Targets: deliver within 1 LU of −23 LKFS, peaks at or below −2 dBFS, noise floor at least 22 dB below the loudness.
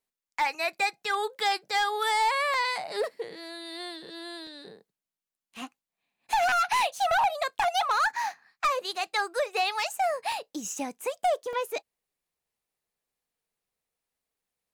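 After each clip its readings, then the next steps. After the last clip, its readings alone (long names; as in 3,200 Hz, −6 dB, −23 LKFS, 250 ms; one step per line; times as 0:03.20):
share of clipped samples 1.3%; peaks flattened at −20.0 dBFS; number of dropouts 5; longest dropout 1.6 ms; integrated loudness −28.0 LKFS; sample peak −20.0 dBFS; target loudness −23.0 LKFS
→ clipped peaks rebuilt −20 dBFS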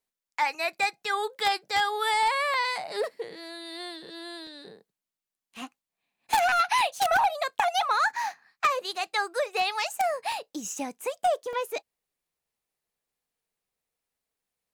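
share of clipped samples 0.0%; number of dropouts 5; longest dropout 1.6 ms
→ repair the gap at 0:02.54/0:04.47/0:05.57/0:10.32/0:11.53, 1.6 ms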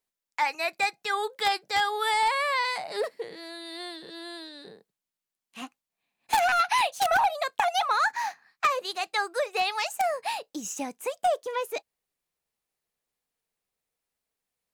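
number of dropouts 0; integrated loudness −27.0 LKFS; sample peak −11.0 dBFS; target loudness −23.0 LKFS
→ level +4 dB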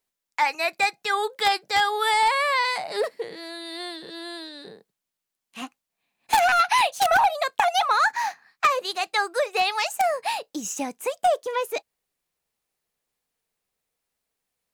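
integrated loudness −23.0 LKFS; sample peak −7.0 dBFS; background noise floor −85 dBFS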